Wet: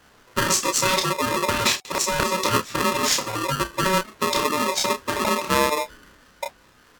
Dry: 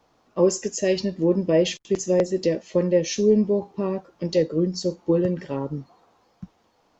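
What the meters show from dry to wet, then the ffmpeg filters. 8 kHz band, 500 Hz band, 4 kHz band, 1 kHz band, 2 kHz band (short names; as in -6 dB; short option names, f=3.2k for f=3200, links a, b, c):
n/a, -5.0 dB, +11.0 dB, +17.0 dB, +14.5 dB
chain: -filter_complex "[0:a]asplit=2[a][b];[b]adelay=30,volume=-3.5dB[c];[a][c]amix=inputs=2:normalize=0,afftfilt=real='re*lt(hypot(re,im),0.501)':imag='im*lt(hypot(re,im),0.501)':win_size=1024:overlap=0.75,aeval=exprs='val(0)*sgn(sin(2*PI*750*n/s))':c=same,volume=7.5dB"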